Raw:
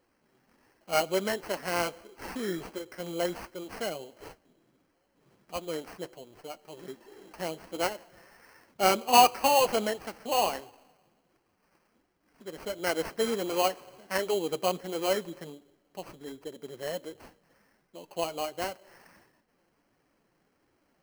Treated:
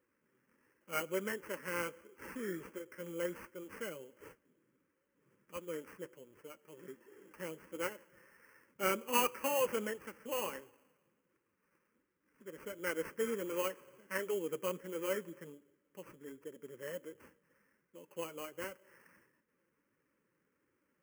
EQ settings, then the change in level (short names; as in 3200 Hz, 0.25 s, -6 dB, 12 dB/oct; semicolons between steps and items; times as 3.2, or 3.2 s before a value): HPF 140 Hz 6 dB/oct; bell 540 Hz +8 dB 0.66 oct; fixed phaser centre 1700 Hz, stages 4; -5.5 dB